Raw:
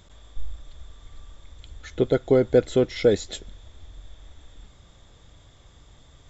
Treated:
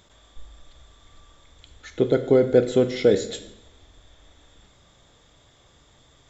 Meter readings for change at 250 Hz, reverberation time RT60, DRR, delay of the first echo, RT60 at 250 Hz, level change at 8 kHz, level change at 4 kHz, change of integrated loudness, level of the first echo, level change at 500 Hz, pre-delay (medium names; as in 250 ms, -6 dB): +1.5 dB, 0.80 s, 9.0 dB, no echo, 0.95 s, no reading, +0.5 dB, +1.5 dB, no echo, +1.5 dB, 22 ms